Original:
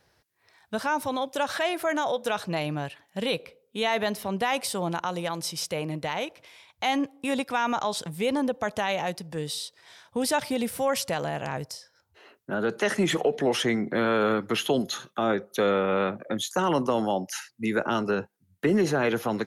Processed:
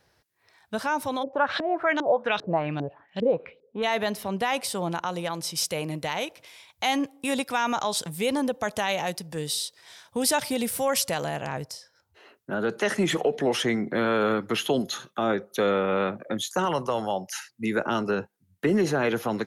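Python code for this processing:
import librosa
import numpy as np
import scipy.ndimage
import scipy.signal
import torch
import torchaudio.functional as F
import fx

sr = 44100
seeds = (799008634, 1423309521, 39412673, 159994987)

y = fx.filter_lfo_lowpass(x, sr, shape='saw_up', hz=2.5, low_hz=310.0, high_hz=4500.0, q=3.2, at=(1.22, 3.82), fade=0.02)
y = fx.high_shelf(y, sr, hz=4600.0, db=8.0, at=(5.55, 11.37))
y = fx.peak_eq(y, sr, hz=270.0, db=-10.5, octaves=0.77, at=(16.65, 17.37))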